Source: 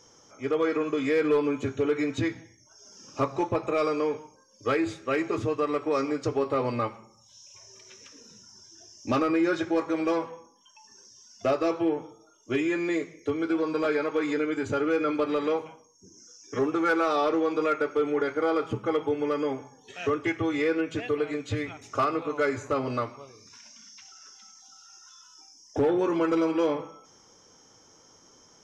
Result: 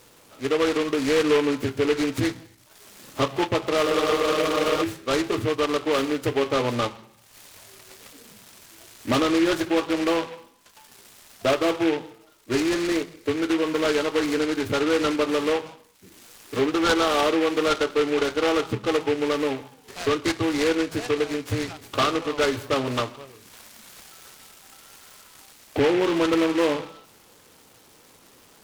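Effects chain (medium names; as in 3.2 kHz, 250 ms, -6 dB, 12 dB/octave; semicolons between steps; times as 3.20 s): spectral freeze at 3.87 s, 0.95 s; delay time shaken by noise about 1.9 kHz, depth 0.086 ms; trim +3.5 dB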